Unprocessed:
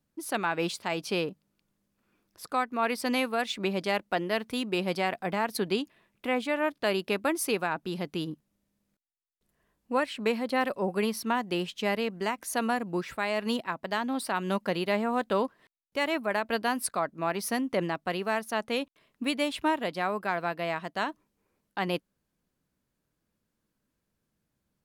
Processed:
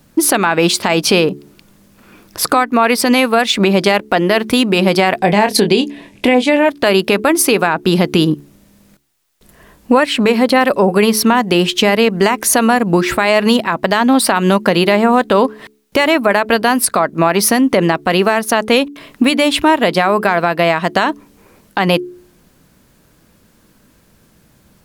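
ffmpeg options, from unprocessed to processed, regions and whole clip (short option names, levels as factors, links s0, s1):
-filter_complex "[0:a]asettb=1/sr,asplit=3[s0][s1][s2];[s0]atrim=end=5.194[s3];[s1]atrim=start=5.19:end=6.69,asetpts=PTS-STARTPTS,afade=t=in:d=0.004:c=qsin,afade=t=out:st=1.496:d=0.004:c=qsin,lowpass=9800,equalizer=f=1300:w=3.1:g=-12.5,asplit=2[s4][s5];[s5]adelay=24,volume=0.398[s6];[s4][s6]amix=inputs=2:normalize=0,atrim=end_sample=66150[s7];[s2]atrim=start=6.686[s8];[s3][s7]acrossfade=d=0.004:c1=hsin:c2=qsin[s9];[s9][s8]acrossfade=d=0.004:c1=qsin:c2=hsin,acompressor=threshold=0.0126:ratio=4,bandreject=f=71.59:t=h:w=4,bandreject=f=143.18:t=h:w=4,bandreject=f=214.77:t=h:w=4,bandreject=f=286.36:t=h:w=4,bandreject=f=357.95:t=h:w=4,bandreject=f=429.54:t=h:w=4,alimiter=level_in=31.6:limit=0.891:release=50:level=0:latency=1,volume=0.891"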